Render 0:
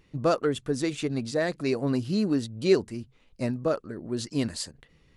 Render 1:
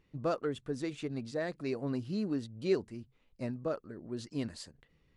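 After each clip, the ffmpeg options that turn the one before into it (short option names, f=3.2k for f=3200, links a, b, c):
-af "highshelf=f=5.4k:g=-8.5,volume=-8.5dB"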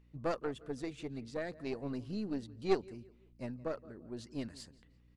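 -filter_complex "[0:a]asplit=2[a][b];[b]adelay=171,lowpass=f=4.2k:p=1,volume=-19dB,asplit=2[c][d];[d]adelay=171,lowpass=f=4.2k:p=1,volume=0.37,asplit=2[e][f];[f]adelay=171,lowpass=f=4.2k:p=1,volume=0.37[g];[a][c][e][g]amix=inputs=4:normalize=0,aeval=exprs='val(0)+0.00112*(sin(2*PI*60*n/s)+sin(2*PI*2*60*n/s)/2+sin(2*PI*3*60*n/s)/3+sin(2*PI*4*60*n/s)/4+sin(2*PI*5*60*n/s)/5)':c=same,aeval=exprs='0.133*(cos(1*acos(clip(val(0)/0.133,-1,1)))-cos(1*PI/2))+0.0376*(cos(2*acos(clip(val(0)/0.133,-1,1)))-cos(2*PI/2))+0.0237*(cos(3*acos(clip(val(0)/0.133,-1,1)))-cos(3*PI/2))':c=same,volume=2dB"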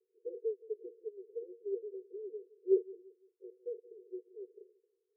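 -af "acrusher=samples=16:mix=1:aa=0.000001:lfo=1:lforange=25.6:lforate=1.6,asuperpass=centerf=420:order=12:qfactor=3.4,volume=4.5dB"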